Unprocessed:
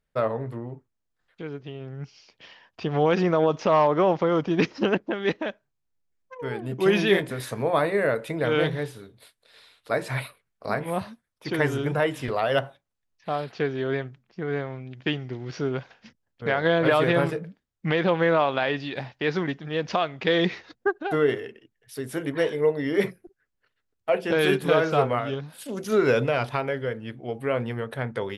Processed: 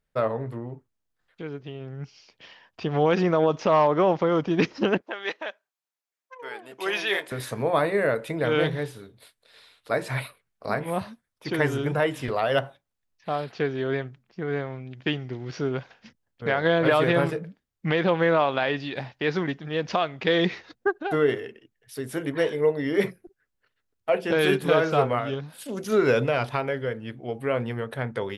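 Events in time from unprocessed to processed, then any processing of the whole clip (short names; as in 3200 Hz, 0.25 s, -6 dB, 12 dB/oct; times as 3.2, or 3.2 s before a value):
5.01–7.32 HPF 680 Hz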